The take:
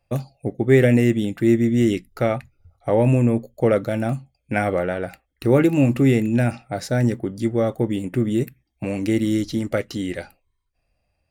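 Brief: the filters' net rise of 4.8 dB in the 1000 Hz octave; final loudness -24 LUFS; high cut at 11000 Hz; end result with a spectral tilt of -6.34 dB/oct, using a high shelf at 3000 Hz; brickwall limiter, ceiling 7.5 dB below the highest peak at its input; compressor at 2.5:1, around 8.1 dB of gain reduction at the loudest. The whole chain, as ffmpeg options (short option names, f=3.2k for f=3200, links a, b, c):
-af "lowpass=11k,equalizer=f=1k:t=o:g=6.5,highshelf=f=3k:g=6,acompressor=threshold=-22dB:ratio=2.5,volume=3.5dB,alimiter=limit=-12dB:level=0:latency=1"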